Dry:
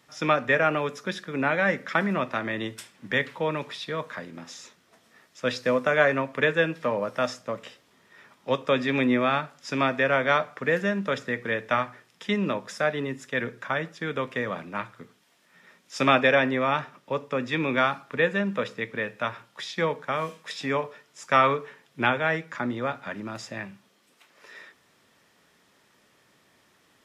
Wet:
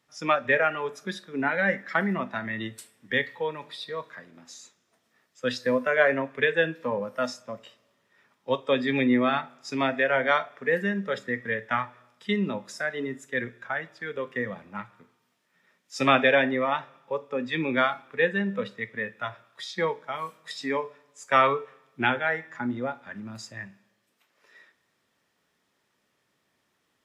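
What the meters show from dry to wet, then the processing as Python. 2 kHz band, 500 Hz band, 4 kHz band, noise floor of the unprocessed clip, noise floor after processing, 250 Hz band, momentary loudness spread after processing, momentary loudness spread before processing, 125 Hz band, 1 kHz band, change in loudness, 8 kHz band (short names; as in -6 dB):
-0.5 dB, -1.0 dB, -1.5 dB, -63 dBFS, -74 dBFS, -0.5 dB, 17 LU, 14 LU, -3.5 dB, -1.5 dB, -0.5 dB, -1.5 dB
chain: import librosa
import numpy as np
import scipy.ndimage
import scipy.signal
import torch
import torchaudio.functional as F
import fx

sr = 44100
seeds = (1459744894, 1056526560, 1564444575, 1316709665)

y = fx.rev_schroeder(x, sr, rt60_s=1.1, comb_ms=25, drr_db=14.5)
y = fx.noise_reduce_blind(y, sr, reduce_db=11)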